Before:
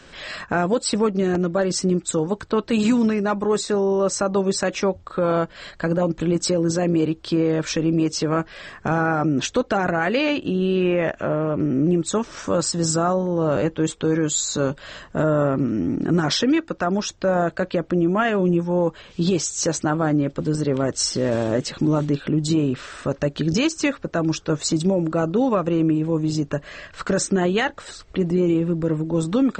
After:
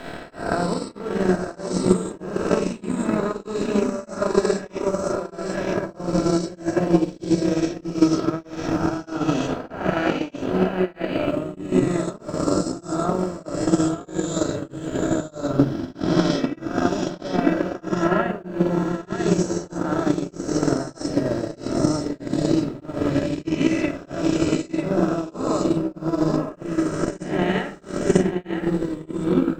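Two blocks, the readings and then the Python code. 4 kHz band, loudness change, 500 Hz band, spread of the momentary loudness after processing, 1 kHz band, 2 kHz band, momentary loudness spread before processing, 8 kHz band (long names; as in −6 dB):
−6.5 dB, −2.0 dB, −2.0 dB, 6 LU, −2.0 dB, −3.5 dB, 5 LU, −8.5 dB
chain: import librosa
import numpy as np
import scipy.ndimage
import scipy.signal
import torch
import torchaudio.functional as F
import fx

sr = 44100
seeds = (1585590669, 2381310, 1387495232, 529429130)

p1 = fx.spec_swells(x, sr, rise_s=2.08)
p2 = p1 + fx.echo_single(p1, sr, ms=946, db=-3.0, dry=0)
p3 = fx.dmg_noise_colour(p2, sr, seeds[0], colour='pink', level_db=-42.0)
p4 = fx.high_shelf(p3, sr, hz=2800.0, db=-9.0)
p5 = fx.room_shoebox(p4, sr, seeds[1], volume_m3=2800.0, walls='furnished', distance_m=2.9)
p6 = fx.transient(p5, sr, attack_db=12, sustain_db=-5)
p7 = p6 * np.abs(np.cos(np.pi * 1.6 * np.arange(len(p6)) / sr))
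y = p7 * librosa.db_to_amplitude(-9.0)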